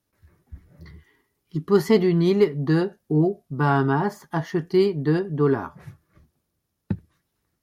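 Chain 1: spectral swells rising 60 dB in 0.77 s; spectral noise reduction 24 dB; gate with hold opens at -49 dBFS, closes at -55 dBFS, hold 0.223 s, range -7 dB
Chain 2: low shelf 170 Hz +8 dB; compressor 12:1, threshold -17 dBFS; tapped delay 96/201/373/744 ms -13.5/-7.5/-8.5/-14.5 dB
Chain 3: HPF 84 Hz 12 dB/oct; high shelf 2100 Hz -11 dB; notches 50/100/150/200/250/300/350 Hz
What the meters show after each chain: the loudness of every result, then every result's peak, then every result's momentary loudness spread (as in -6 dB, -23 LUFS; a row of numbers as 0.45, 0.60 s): -21.0, -23.0, -23.5 LUFS; -5.5, -8.5, -7.0 dBFS; 12, 20, 15 LU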